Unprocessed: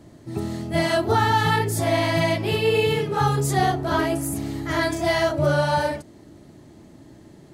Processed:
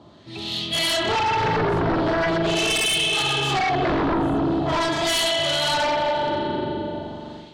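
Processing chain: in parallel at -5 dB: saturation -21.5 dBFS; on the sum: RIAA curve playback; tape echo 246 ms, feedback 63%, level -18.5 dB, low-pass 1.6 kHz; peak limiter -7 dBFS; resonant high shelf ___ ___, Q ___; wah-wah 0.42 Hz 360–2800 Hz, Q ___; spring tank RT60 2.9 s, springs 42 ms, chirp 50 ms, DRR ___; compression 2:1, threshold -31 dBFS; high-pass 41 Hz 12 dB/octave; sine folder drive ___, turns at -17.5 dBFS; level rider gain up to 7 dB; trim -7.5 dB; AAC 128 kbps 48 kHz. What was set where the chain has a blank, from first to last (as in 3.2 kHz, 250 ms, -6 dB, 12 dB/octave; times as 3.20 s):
2.6 kHz, +11.5 dB, 3, 2.3, 2 dB, 11 dB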